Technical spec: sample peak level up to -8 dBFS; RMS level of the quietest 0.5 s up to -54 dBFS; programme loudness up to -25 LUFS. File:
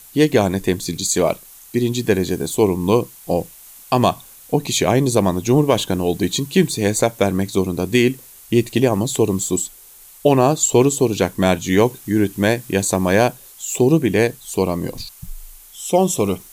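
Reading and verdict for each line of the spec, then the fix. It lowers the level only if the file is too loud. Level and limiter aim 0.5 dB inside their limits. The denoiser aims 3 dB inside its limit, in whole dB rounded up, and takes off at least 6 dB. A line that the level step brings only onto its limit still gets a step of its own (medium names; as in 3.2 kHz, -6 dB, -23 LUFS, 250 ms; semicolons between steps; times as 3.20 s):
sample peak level -2.5 dBFS: fail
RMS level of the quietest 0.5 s -44 dBFS: fail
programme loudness -18.5 LUFS: fail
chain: noise reduction 6 dB, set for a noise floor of -44 dBFS; trim -7 dB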